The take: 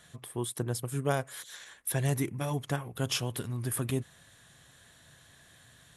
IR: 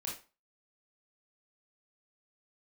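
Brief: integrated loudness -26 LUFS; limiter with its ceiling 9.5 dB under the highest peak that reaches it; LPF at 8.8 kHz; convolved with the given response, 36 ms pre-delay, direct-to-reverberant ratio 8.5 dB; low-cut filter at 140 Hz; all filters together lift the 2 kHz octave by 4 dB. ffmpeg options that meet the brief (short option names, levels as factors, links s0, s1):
-filter_complex "[0:a]highpass=140,lowpass=8800,equalizer=f=2000:t=o:g=5.5,alimiter=limit=0.0794:level=0:latency=1,asplit=2[s0][s1];[1:a]atrim=start_sample=2205,adelay=36[s2];[s1][s2]afir=irnorm=-1:irlink=0,volume=0.376[s3];[s0][s3]amix=inputs=2:normalize=0,volume=3.16"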